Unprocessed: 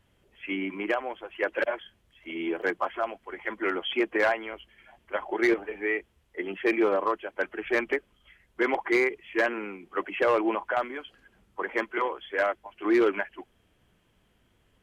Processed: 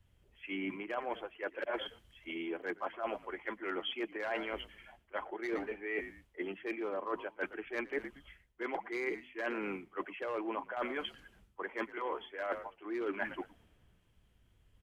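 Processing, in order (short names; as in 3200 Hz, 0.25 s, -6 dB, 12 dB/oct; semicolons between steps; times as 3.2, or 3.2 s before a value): frequency-shifting echo 0.117 s, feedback 32%, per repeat -67 Hz, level -21.5 dB; reverse; compressor 20:1, threshold -37 dBFS, peak gain reduction 19 dB; reverse; three-band expander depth 40%; gain +3 dB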